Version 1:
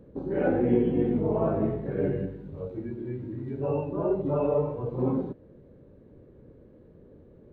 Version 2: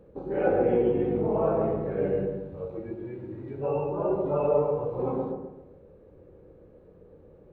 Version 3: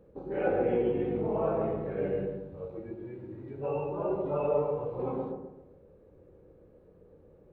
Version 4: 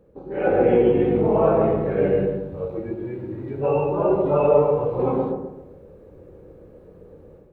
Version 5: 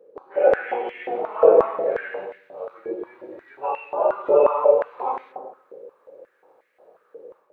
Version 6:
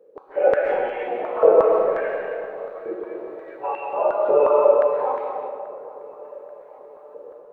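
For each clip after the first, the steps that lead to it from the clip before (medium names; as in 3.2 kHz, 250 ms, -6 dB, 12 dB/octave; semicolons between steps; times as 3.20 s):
graphic EQ with 31 bands 125 Hz -7 dB, 250 Hz -9 dB, 500 Hz +5 dB, 800 Hz +6 dB, 1.25 kHz +5 dB, 2.5 kHz +5 dB; feedback echo behind a low-pass 134 ms, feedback 38%, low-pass 1.2 kHz, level -3 dB; trim -2 dB
dynamic bell 2.7 kHz, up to +5 dB, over -47 dBFS, Q 0.9; trim -4.5 dB
level rider gain up to 9.5 dB; trim +2 dB
step-sequenced high-pass 5.6 Hz 460–2000 Hz; trim -3.5 dB
filtered feedback delay 835 ms, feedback 64%, low-pass 1.8 kHz, level -19 dB; on a send at -3 dB: reverberation RT60 1.6 s, pre-delay 95 ms; on the sum: trim -1 dB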